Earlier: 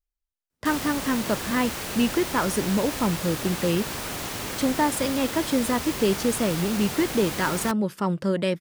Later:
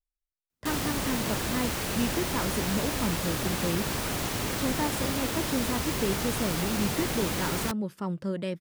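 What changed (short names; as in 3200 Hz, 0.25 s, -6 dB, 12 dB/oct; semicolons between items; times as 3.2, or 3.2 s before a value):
speech -10.0 dB; master: add low shelf 310 Hz +5.5 dB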